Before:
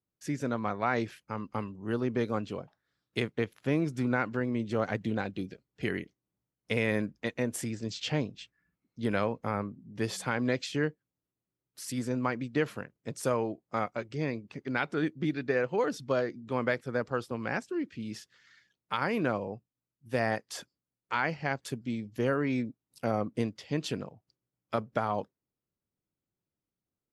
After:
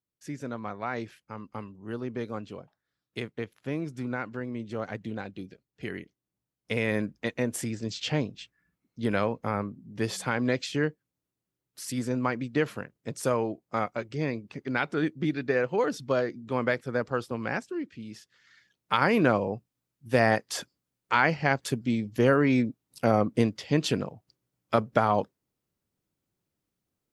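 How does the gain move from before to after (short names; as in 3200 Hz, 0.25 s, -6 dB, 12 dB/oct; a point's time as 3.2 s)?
5.86 s -4 dB
7.16 s +2.5 dB
17.45 s +2.5 dB
18.17 s -4 dB
18.94 s +7 dB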